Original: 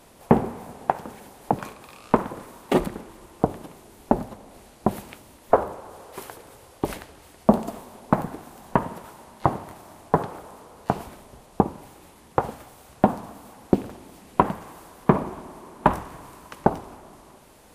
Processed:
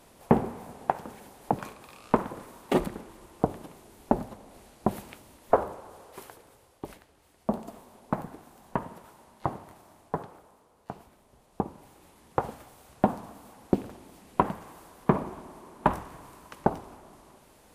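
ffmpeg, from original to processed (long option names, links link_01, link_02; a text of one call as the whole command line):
ffmpeg -i in.wav -af "volume=14dB,afade=type=out:start_time=5.63:duration=1.37:silence=0.251189,afade=type=in:start_time=7:duration=0.91:silence=0.446684,afade=type=out:start_time=9.78:duration=0.85:silence=0.446684,afade=type=in:start_time=11.13:duration=1.26:silence=0.281838" out.wav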